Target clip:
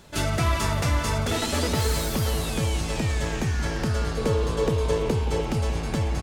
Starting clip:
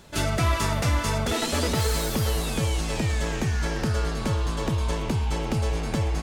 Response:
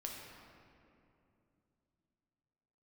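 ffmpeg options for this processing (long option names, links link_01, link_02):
-filter_complex "[0:a]asettb=1/sr,asplit=3[link_01][link_02][link_03];[link_01]atrim=end=4.174[link_04];[link_02]atrim=start=4.17:end=5.41,asetpts=PTS-STARTPTS,afade=type=in:duration=0.004:curve=qsin,afade=type=out:start_time=1.236:duration=0.004:curve=qsin,equalizer=frequency=460:width=3.7:gain=13.5[link_05];[link_03]atrim=start=5.406[link_06];[link_04][link_05]acrossfade=duration=0.004:curve1=hsin:curve2=qsin[link_07];[link_07][link_06]acrossfade=duration=0.004:curve1=qsin:curve2=hsin,asplit=2[link_08][link_09];[link_09]adelay=174.9,volume=-14dB,highshelf=frequency=4000:gain=-3.94[link_10];[link_08][link_10]amix=inputs=2:normalize=0,asplit=2[link_11][link_12];[1:a]atrim=start_sample=2205[link_13];[link_12][link_13]afir=irnorm=-1:irlink=0,volume=-12dB[link_14];[link_11][link_14]amix=inputs=2:normalize=0,volume=-1.5dB"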